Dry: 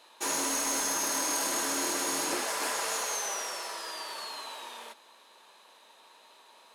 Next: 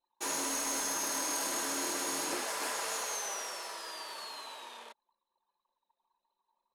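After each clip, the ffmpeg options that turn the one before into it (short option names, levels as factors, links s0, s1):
-af "anlmdn=0.0251,volume=0.631"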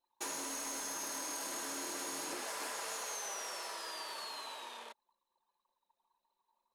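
-af "acompressor=threshold=0.0126:ratio=6"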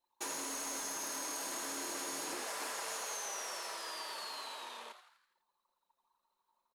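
-filter_complex "[0:a]asplit=7[s0][s1][s2][s3][s4][s5][s6];[s1]adelay=83,afreqshift=140,volume=0.316[s7];[s2]adelay=166,afreqshift=280,volume=0.164[s8];[s3]adelay=249,afreqshift=420,volume=0.0851[s9];[s4]adelay=332,afreqshift=560,volume=0.0447[s10];[s5]adelay=415,afreqshift=700,volume=0.0232[s11];[s6]adelay=498,afreqshift=840,volume=0.012[s12];[s0][s7][s8][s9][s10][s11][s12]amix=inputs=7:normalize=0"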